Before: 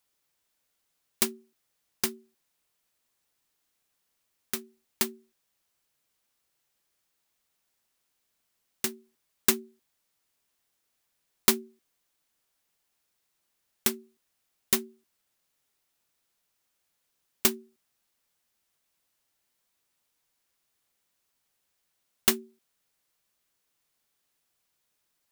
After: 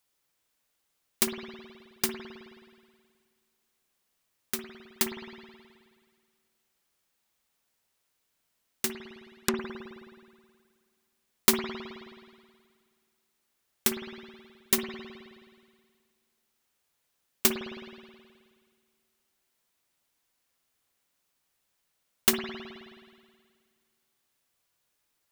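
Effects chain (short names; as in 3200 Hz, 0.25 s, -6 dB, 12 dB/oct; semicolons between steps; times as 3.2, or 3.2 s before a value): 8.91–9.59 treble ducked by the level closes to 1400 Hz, closed at -21.5 dBFS; spring tank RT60 1.9 s, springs 53 ms, chirp 50 ms, DRR 4.5 dB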